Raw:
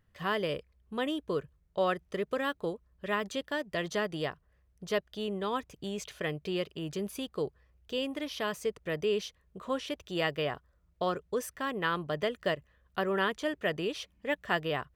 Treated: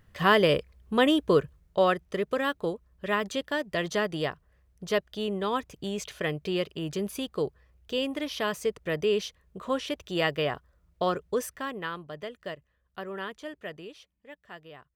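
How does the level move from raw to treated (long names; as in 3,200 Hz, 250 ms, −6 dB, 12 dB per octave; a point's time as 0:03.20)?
0:01.36 +10.5 dB
0:02.04 +4 dB
0:11.41 +4 dB
0:12.04 −7 dB
0:13.60 −7 dB
0:14.26 −15.5 dB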